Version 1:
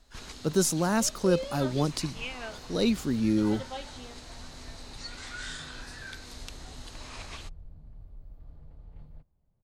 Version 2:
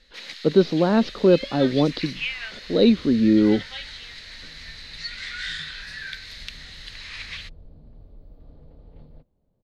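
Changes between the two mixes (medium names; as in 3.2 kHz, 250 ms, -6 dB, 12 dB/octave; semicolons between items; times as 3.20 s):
speech: add steep low-pass 4.1 kHz; first sound: add resonant high-pass 1.9 kHz, resonance Q 3.9; master: add ten-band graphic EQ 250 Hz +8 dB, 500 Hz +10 dB, 4 kHz +10 dB, 8 kHz -8 dB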